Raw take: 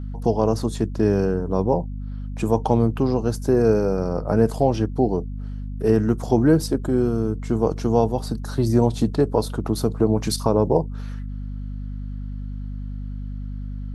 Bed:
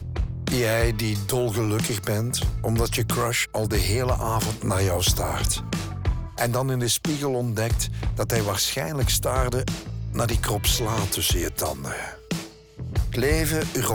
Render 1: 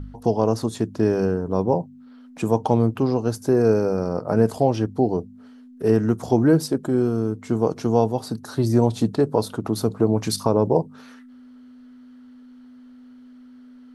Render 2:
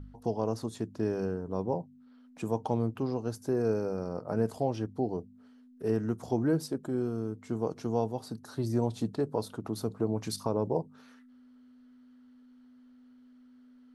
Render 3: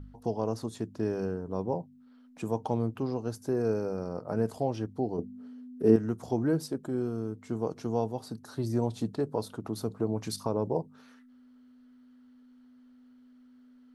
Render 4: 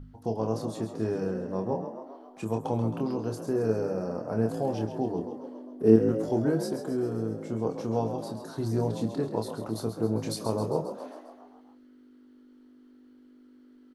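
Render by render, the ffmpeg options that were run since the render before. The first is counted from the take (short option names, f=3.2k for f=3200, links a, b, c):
-af "bandreject=f=50:t=h:w=4,bandreject=f=100:t=h:w=4,bandreject=f=150:t=h:w=4,bandreject=f=200:t=h:w=4"
-af "volume=-11dB"
-filter_complex "[0:a]asettb=1/sr,asplit=3[a][b][c];[a]atrim=end=5.184[d];[b]atrim=start=5.18:end=5.96,asetpts=PTS-STARTPTS,afade=t=in:d=0.004:c=qsin,afade=t=out:st=0.776:d=0.004:c=qsin,equalizer=f=270:w=0.7:g=11.5[e];[c]atrim=start=5.956[f];[d][e]acrossfade=d=0.004:c1=hsin:c2=qsin[g];[g][f]acrossfade=d=0.004:c1=qsin:c2=hsin"
-filter_complex "[0:a]asplit=2[a][b];[b]adelay=27,volume=-6dB[c];[a][c]amix=inputs=2:normalize=0,asplit=8[d][e][f][g][h][i][j][k];[e]adelay=134,afreqshift=50,volume=-9.5dB[l];[f]adelay=268,afreqshift=100,volume=-13.9dB[m];[g]adelay=402,afreqshift=150,volume=-18.4dB[n];[h]adelay=536,afreqshift=200,volume=-22.8dB[o];[i]adelay=670,afreqshift=250,volume=-27.2dB[p];[j]adelay=804,afreqshift=300,volume=-31.7dB[q];[k]adelay=938,afreqshift=350,volume=-36.1dB[r];[d][l][m][n][o][p][q][r]amix=inputs=8:normalize=0"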